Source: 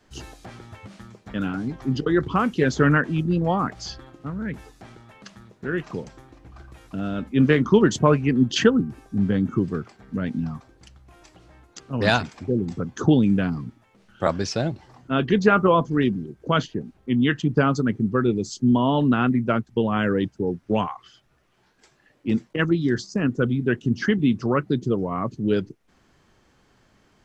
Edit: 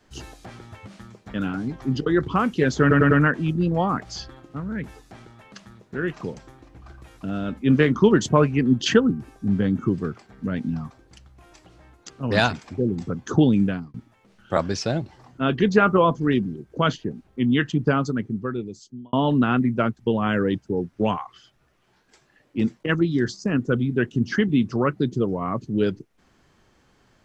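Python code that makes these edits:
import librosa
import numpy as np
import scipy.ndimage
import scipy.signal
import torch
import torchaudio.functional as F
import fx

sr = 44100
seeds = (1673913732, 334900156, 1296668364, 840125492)

y = fx.edit(x, sr, fx.stutter(start_s=2.81, slice_s=0.1, count=4),
    fx.fade_out_span(start_s=13.32, length_s=0.32),
    fx.fade_out_span(start_s=17.43, length_s=1.4), tone=tone)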